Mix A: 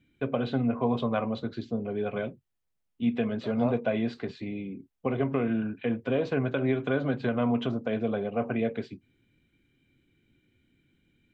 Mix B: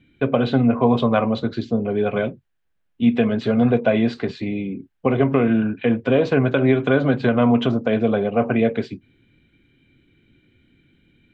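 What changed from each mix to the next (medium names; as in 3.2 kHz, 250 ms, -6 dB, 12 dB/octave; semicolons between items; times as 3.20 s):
first voice +10.0 dB; second voice: add resonant high-pass 1.6 kHz, resonance Q 9.2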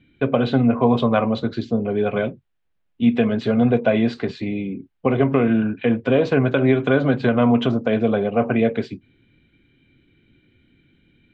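second voice -6.0 dB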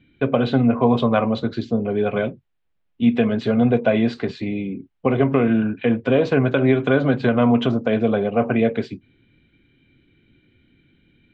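second voice -5.0 dB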